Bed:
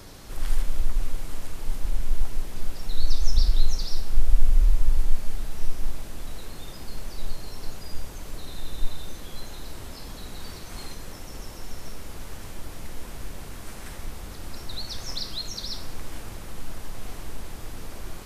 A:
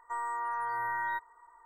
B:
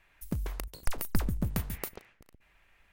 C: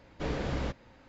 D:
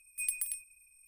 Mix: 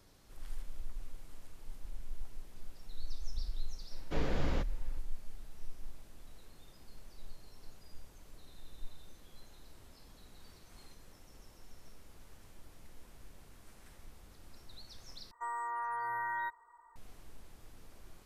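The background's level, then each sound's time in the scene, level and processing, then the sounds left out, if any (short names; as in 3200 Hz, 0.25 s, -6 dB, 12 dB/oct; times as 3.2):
bed -18.5 dB
3.91 add C -3 dB
15.31 replace with A -3.5 dB
not used: B, D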